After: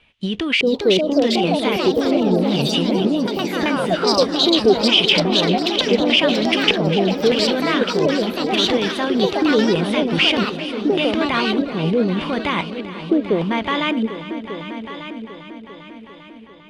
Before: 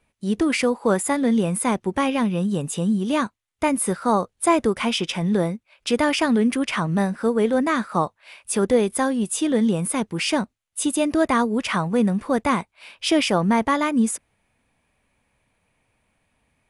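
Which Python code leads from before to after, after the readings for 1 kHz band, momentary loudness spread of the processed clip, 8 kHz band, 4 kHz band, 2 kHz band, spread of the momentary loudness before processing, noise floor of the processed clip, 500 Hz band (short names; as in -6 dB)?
+0.5 dB, 14 LU, -7.0 dB, +12.5 dB, +5.5 dB, 6 LU, -40 dBFS, +5.0 dB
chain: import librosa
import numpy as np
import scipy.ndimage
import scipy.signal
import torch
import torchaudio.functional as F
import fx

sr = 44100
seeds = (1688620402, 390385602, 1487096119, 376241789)

p1 = fx.high_shelf(x, sr, hz=4000.0, db=9.0)
p2 = fx.over_compress(p1, sr, threshold_db=-26.0, ratio=-0.5)
p3 = p1 + F.gain(torch.from_numpy(p2), 1.5).numpy()
p4 = fx.filter_lfo_lowpass(p3, sr, shape='square', hz=0.82, low_hz=420.0, high_hz=3100.0, q=4.2)
p5 = p4 + fx.echo_heads(p4, sr, ms=398, heads='all three', feedback_pct=49, wet_db=-15.0, dry=0)
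p6 = fx.echo_pitch(p5, sr, ms=486, semitones=4, count=2, db_per_echo=-3.0)
y = F.gain(torch.from_numpy(p6), -5.0).numpy()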